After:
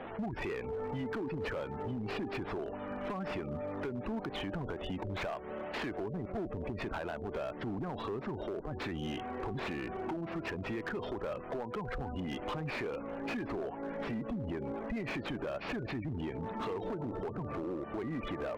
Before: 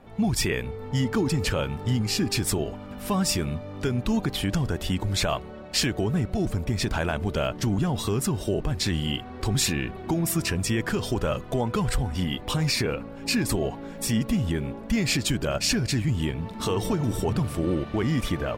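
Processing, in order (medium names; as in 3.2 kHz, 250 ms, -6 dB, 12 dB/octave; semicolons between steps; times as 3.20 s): one-bit delta coder 64 kbps, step -37.5 dBFS; tape spacing loss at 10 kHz 26 dB; in parallel at +1 dB: peak limiter -23 dBFS, peak gain reduction 7.5 dB; on the sum: spectral gate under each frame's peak -30 dB strong; three-band isolator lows -14 dB, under 280 Hz, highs -21 dB, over 3.7 kHz; compression 16:1, threshold -30 dBFS, peak gain reduction 11 dB; hard clipper -30.5 dBFS, distortion -14 dB; trim -2 dB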